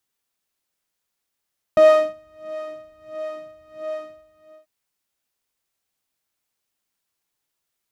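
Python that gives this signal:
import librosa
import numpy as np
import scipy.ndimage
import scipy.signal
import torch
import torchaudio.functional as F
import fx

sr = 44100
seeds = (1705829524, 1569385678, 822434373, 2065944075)

y = fx.sub_patch_wobble(sr, seeds[0], note=75, wave='saw', wave2='saw', interval_st=0, level2_db=-9.0, sub_db=-28, noise_db=-16.0, kind='bandpass', cutoff_hz=120.0, q=1.4, env_oct=1.0, env_decay_s=0.27, env_sustain_pct=45, attack_ms=1.3, decay_s=0.36, sustain_db=-20.0, release_s=0.7, note_s=2.19, lfo_hz=1.5, wobble_oct=1.6)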